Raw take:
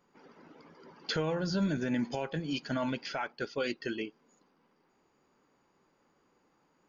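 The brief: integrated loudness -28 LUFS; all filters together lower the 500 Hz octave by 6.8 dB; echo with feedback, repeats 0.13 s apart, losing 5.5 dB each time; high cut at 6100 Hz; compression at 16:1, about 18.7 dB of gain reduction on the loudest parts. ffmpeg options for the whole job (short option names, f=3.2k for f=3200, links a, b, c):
-af "lowpass=6.1k,equalizer=f=500:t=o:g=-8.5,acompressor=threshold=-47dB:ratio=16,aecho=1:1:130|260|390|520|650|780|910:0.531|0.281|0.149|0.079|0.0419|0.0222|0.0118,volume=22.5dB"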